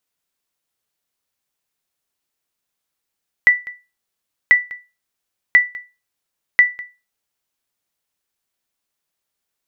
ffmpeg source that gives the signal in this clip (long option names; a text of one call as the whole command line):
ffmpeg -f lavfi -i "aevalsrc='0.75*(sin(2*PI*1970*mod(t,1.04))*exp(-6.91*mod(t,1.04)/0.27)+0.0891*sin(2*PI*1970*max(mod(t,1.04)-0.2,0))*exp(-6.91*max(mod(t,1.04)-0.2,0)/0.27))':duration=4.16:sample_rate=44100" out.wav